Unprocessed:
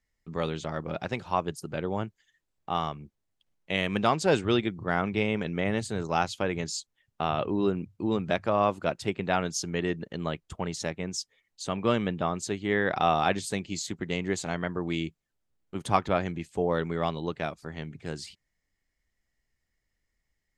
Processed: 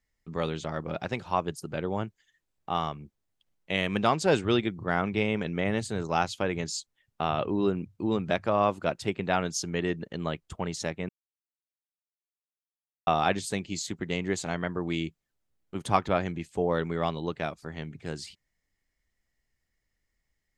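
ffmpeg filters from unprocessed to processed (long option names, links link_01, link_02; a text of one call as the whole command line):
ffmpeg -i in.wav -filter_complex "[0:a]asplit=3[link_01][link_02][link_03];[link_01]atrim=end=11.09,asetpts=PTS-STARTPTS,afade=type=out:start_time=11.086:duration=0.004:curve=hsin[link_04];[link_02]atrim=start=11.09:end=13.07,asetpts=PTS-STARTPTS,volume=0[link_05];[link_03]atrim=start=13.07,asetpts=PTS-STARTPTS,afade=type=in:duration=0.004:curve=hsin[link_06];[link_04][link_05][link_06]concat=n=3:v=0:a=1" out.wav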